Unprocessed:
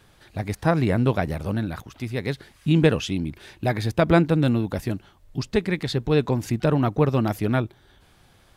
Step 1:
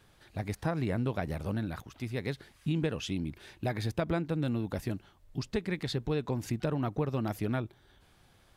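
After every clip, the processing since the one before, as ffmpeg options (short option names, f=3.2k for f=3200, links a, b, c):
-af "acompressor=threshold=-21dB:ratio=4,volume=-6.5dB"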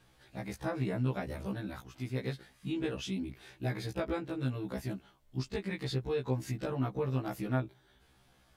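-af "afftfilt=real='re*1.73*eq(mod(b,3),0)':imag='im*1.73*eq(mod(b,3),0)':win_size=2048:overlap=0.75"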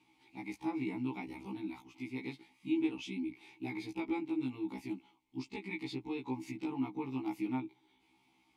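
-filter_complex "[0:a]asplit=3[a][b][c];[a]bandpass=f=300:t=q:w=8,volume=0dB[d];[b]bandpass=f=870:t=q:w=8,volume=-6dB[e];[c]bandpass=f=2.24k:t=q:w=8,volume=-9dB[f];[d][e][f]amix=inputs=3:normalize=0,crystalizer=i=5.5:c=0,volume=7.5dB"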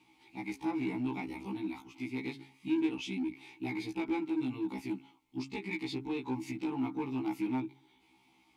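-filter_complex "[0:a]bandreject=f=135:t=h:w=4,bandreject=f=270:t=h:w=4,bandreject=f=405:t=h:w=4,bandreject=f=540:t=h:w=4,bandreject=f=675:t=h:w=4,bandreject=f=810:t=h:w=4,bandreject=f=945:t=h:w=4,bandreject=f=1.08k:t=h:w=4,bandreject=f=1.215k:t=h:w=4,bandreject=f=1.35k:t=h:w=4,bandreject=f=1.485k:t=h:w=4,bandreject=f=1.62k:t=h:w=4,bandreject=f=1.755k:t=h:w=4,bandreject=f=1.89k:t=h:w=4,bandreject=f=2.025k:t=h:w=4,bandreject=f=2.16k:t=h:w=4,asplit=2[a][b];[b]asoftclip=type=hard:threshold=-37.5dB,volume=-4dB[c];[a][c]amix=inputs=2:normalize=0"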